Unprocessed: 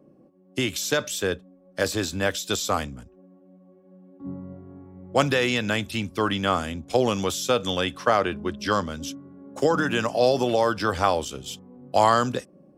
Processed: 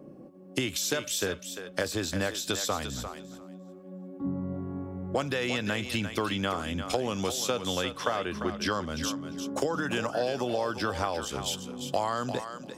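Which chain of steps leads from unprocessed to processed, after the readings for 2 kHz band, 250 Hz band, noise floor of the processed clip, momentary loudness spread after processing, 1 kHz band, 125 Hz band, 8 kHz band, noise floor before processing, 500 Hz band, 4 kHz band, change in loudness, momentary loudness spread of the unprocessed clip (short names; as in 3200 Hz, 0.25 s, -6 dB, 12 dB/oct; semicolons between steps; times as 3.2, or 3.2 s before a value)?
-5.5 dB, -4.5 dB, -48 dBFS, 8 LU, -8.0 dB, -4.5 dB, -1.5 dB, -55 dBFS, -7.0 dB, -3.5 dB, -6.5 dB, 16 LU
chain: compressor 5:1, threshold -35 dBFS, peak gain reduction 19.5 dB; on a send: thinning echo 0.348 s, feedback 16%, level -8 dB; on the sum: gain +7 dB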